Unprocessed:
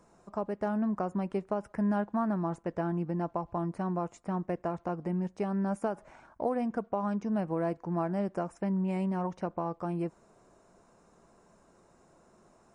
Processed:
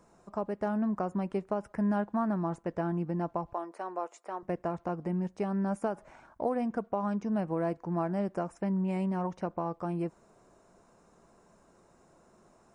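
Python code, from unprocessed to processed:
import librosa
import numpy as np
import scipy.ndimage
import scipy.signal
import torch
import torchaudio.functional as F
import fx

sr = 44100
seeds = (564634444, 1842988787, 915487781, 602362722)

y = fx.highpass(x, sr, hz=390.0, slope=24, at=(3.53, 4.43))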